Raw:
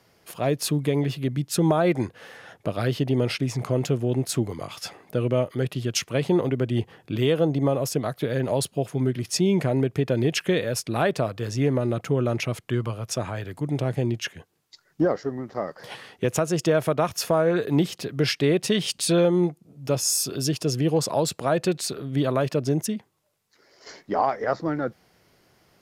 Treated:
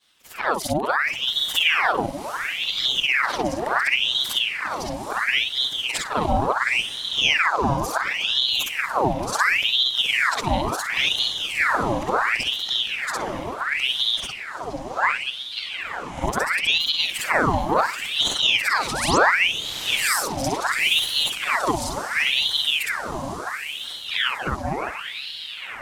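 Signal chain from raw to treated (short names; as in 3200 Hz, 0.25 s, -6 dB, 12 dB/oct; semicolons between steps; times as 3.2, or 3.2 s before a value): short-time reversal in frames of 0.138 s; spectral repair 15.62–16.24, 930–11000 Hz both; envelope flanger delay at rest 6.7 ms, full sweep at -23.5 dBFS; painted sound rise, 18.91–19.18, 640–7800 Hz -32 dBFS; on a send: diffused feedback echo 0.854 s, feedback 56%, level -8 dB; on the sum: ring modulator with a swept carrier 2000 Hz, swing 80%, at 0.71 Hz; gain +7.5 dB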